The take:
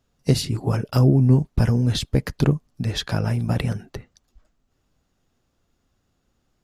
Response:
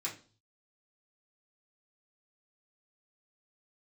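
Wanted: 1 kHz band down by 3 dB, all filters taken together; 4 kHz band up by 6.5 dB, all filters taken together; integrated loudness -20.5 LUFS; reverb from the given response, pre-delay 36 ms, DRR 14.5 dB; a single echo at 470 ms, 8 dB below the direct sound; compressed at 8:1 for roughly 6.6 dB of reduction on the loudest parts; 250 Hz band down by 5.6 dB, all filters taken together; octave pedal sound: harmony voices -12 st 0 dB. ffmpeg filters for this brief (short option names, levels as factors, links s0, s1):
-filter_complex "[0:a]equalizer=f=250:t=o:g=-8,equalizer=f=1000:t=o:g=-4,equalizer=f=4000:t=o:g=8,acompressor=threshold=0.0891:ratio=8,aecho=1:1:470:0.398,asplit=2[s0][s1];[1:a]atrim=start_sample=2205,adelay=36[s2];[s1][s2]afir=irnorm=-1:irlink=0,volume=0.15[s3];[s0][s3]amix=inputs=2:normalize=0,asplit=2[s4][s5];[s5]asetrate=22050,aresample=44100,atempo=2,volume=1[s6];[s4][s6]amix=inputs=2:normalize=0,volume=1.58"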